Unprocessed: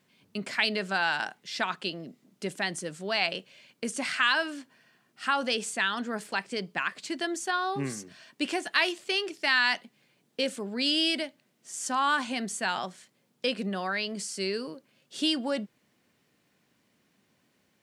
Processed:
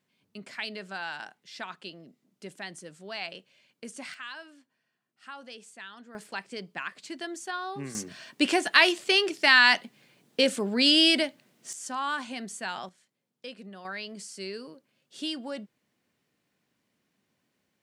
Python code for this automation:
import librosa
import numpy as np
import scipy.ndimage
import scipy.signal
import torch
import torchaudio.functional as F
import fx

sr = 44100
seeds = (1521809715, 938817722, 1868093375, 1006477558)

y = fx.gain(x, sr, db=fx.steps((0.0, -9.0), (4.14, -16.5), (6.15, -5.5), (7.95, 6.0), (11.73, -5.0), (12.89, -13.0), (13.85, -6.5)))